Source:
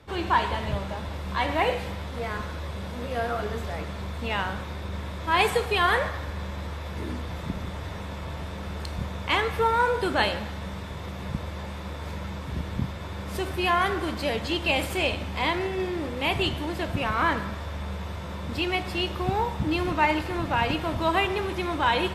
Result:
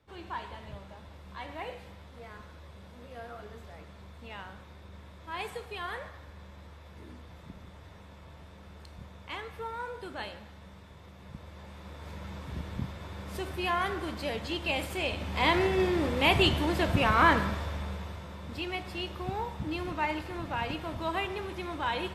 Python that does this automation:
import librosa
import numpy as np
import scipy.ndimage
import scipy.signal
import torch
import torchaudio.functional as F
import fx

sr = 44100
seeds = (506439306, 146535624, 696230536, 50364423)

y = fx.gain(x, sr, db=fx.line((11.19, -15.5), (12.37, -6.5), (15.05, -6.5), (15.57, 2.0), (17.43, 2.0), (18.32, -8.5)))